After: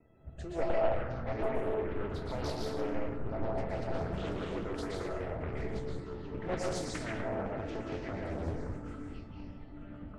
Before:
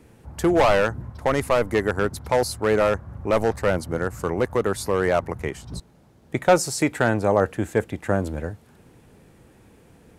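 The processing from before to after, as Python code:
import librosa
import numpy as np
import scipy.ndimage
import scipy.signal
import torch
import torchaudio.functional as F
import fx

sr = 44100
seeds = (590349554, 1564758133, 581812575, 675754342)

p1 = fx.high_shelf(x, sr, hz=3800.0, db=-9.5)
p2 = fx.over_compress(p1, sr, threshold_db=-27.0, ratio=-0.5)
p3 = p1 + F.gain(torch.from_numpy(p2), -3.0).numpy()
p4 = fx.leveller(p3, sr, passes=2)
p5 = fx.level_steps(p4, sr, step_db=11)
p6 = fx.rotary_switch(p5, sr, hz=0.7, then_hz=6.0, switch_at_s=2.3)
p7 = fx.comb_fb(p6, sr, f0_hz=660.0, decay_s=0.25, harmonics='all', damping=0.0, mix_pct=90)
p8 = fx.spec_topn(p7, sr, count=64)
p9 = fx.air_absorb(p8, sr, metres=82.0)
p10 = p9 + fx.echo_stepped(p9, sr, ms=426, hz=1300.0, octaves=0.7, feedback_pct=70, wet_db=-12.0, dry=0)
p11 = fx.rev_plate(p10, sr, seeds[0], rt60_s=1.1, hf_ratio=0.65, predelay_ms=105, drr_db=-3.0)
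p12 = fx.echo_pitch(p11, sr, ms=517, semitones=-7, count=3, db_per_echo=-6.0)
y = fx.doppler_dist(p12, sr, depth_ms=0.59)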